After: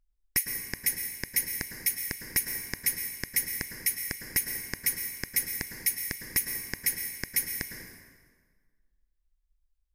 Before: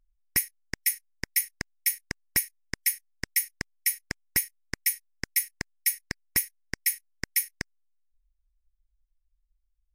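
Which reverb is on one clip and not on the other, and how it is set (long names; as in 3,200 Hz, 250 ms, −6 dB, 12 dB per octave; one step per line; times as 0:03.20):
dense smooth reverb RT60 1.6 s, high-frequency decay 0.75×, pre-delay 95 ms, DRR 4 dB
level −2 dB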